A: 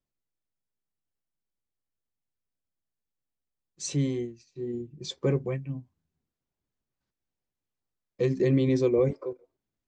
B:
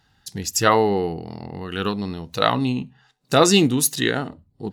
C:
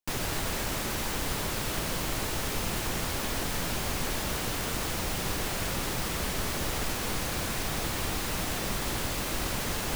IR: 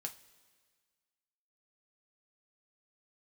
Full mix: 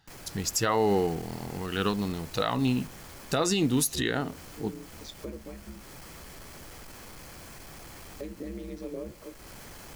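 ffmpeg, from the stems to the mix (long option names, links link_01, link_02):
-filter_complex "[0:a]aeval=exprs='val(0)*sin(2*PI*73*n/s)':channel_layout=same,volume=-3dB,asplit=2[link_01][link_02];[link_02]volume=-10.5dB[link_03];[1:a]volume=-3dB[link_04];[2:a]bandreject=frequency=3700:width=7.6,asoftclip=type=tanh:threshold=-32.5dB,volume=-11.5dB,asplit=2[link_05][link_06];[link_06]volume=-8.5dB[link_07];[link_01][link_05]amix=inputs=2:normalize=0,bandreject=frequency=2800:width=18,acompressor=threshold=-42dB:ratio=6,volume=0dB[link_08];[3:a]atrim=start_sample=2205[link_09];[link_03][link_07]amix=inputs=2:normalize=0[link_10];[link_10][link_09]afir=irnorm=-1:irlink=0[link_11];[link_04][link_08][link_11]amix=inputs=3:normalize=0,alimiter=limit=-15dB:level=0:latency=1:release=137"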